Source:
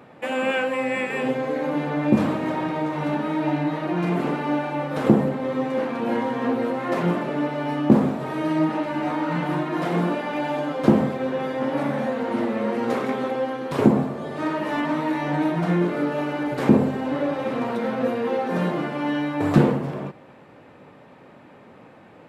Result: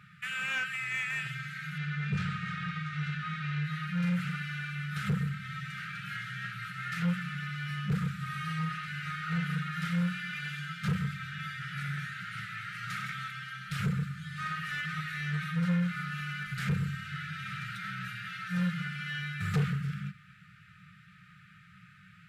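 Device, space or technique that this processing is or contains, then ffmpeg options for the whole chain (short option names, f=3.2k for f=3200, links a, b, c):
saturation between pre-emphasis and de-emphasis: -filter_complex "[0:a]asettb=1/sr,asplit=3[a][b][c];[a]atrim=end=1.784[d];[b]atrim=start=1.78:end=3.64,asetpts=PTS-STARTPTS,afade=t=in:d=0.004:c=qsin,afade=t=out:st=1.856:d=0.004:c=qsin,lowpass=5.9k[e];[c]atrim=start=3.636[f];[d][e]acrossfade=d=0.004:c1=hsin:c2=qsin[g];[g][f]acrossfade=d=0.004:c1=qsin:c2=hsin,afftfilt=real='re*(1-between(b*sr/4096,200,1200))':imag='im*(1-between(b*sr/4096,200,1200))':win_size=4096:overlap=0.75,highshelf=f=3k:g=10.5,asoftclip=type=tanh:threshold=-21.5dB,highshelf=f=3k:g=-10.5,volume=-1.5dB"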